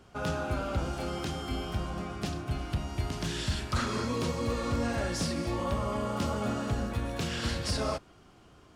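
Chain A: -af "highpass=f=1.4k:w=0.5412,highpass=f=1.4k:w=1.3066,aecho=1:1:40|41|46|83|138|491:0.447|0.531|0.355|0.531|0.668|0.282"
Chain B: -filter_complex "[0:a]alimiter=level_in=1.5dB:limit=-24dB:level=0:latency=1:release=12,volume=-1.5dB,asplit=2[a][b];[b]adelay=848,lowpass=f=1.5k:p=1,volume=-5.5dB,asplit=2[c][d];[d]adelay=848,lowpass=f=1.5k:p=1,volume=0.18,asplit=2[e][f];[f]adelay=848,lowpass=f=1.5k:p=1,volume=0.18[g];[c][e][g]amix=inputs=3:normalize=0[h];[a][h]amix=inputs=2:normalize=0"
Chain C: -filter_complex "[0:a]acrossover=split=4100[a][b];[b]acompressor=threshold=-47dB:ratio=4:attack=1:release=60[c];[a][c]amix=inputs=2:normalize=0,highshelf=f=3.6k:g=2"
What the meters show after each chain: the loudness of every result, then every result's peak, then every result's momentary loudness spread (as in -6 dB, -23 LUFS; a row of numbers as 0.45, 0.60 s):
-36.0, -34.0, -33.0 LUFS; -21.0, -21.5, -20.0 dBFS; 9, 3, 4 LU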